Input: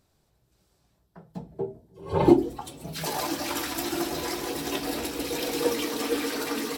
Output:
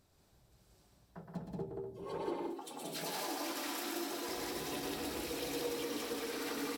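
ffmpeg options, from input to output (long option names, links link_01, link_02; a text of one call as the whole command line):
ffmpeg -i in.wav -filter_complex "[0:a]asettb=1/sr,asplit=3[link_01][link_02][link_03];[link_01]atrim=end=2.044[link_04];[link_02]atrim=start=2.04:end=4.29,asetpts=PTS-STARTPTS,afade=type=in:duration=0.004:curve=qsin,afade=type=out:start_time=2.246:duration=0.004:curve=qsin,highpass=frequency=230:width=0.5412,highpass=frequency=230:width=1.3066[link_05];[link_03]atrim=start=4.286[link_06];[link_04][link_05]acrossfade=duration=0.004:curve1=hsin:curve2=qsin[link_07];[link_07][link_06]acrossfade=duration=0.004:curve1=qsin:curve2=hsin,acompressor=threshold=-38dB:ratio=5,asoftclip=type=tanh:threshold=-29.5dB,aecho=1:1:119.5|180.8|247.8:0.562|0.794|0.398,volume=-2dB" out.wav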